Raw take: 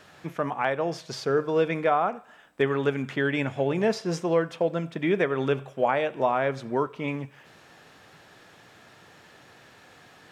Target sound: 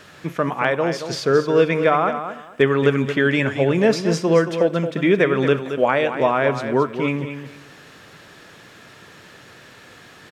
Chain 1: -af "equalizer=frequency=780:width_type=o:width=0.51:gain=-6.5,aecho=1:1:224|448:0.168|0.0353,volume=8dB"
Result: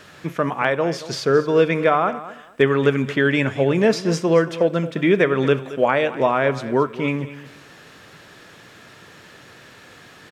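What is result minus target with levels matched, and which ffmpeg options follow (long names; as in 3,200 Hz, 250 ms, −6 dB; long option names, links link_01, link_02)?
echo-to-direct −6 dB
-af "equalizer=frequency=780:width_type=o:width=0.51:gain=-6.5,aecho=1:1:224|448|672:0.335|0.0703|0.0148,volume=8dB"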